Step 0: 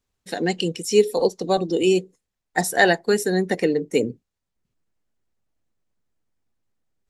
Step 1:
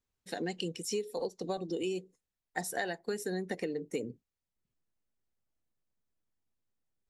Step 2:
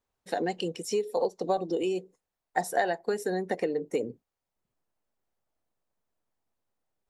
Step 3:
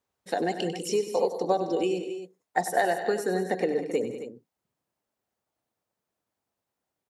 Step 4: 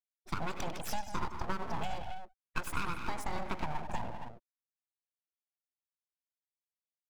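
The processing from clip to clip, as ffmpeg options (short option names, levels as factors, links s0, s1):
-af "acompressor=threshold=0.0794:ratio=10,volume=0.355"
-af "equalizer=f=740:t=o:w=2:g=11"
-af "highpass=87,aecho=1:1:97|159|196|268:0.282|0.133|0.211|0.251,volume=1.26"
-af "afftfilt=real='re*gte(hypot(re,im),0.00891)':imag='im*gte(hypot(re,im),0.00891)':win_size=1024:overlap=0.75,acompressor=threshold=0.0447:ratio=3,aeval=exprs='abs(val(0))':c=same,volume=0.708"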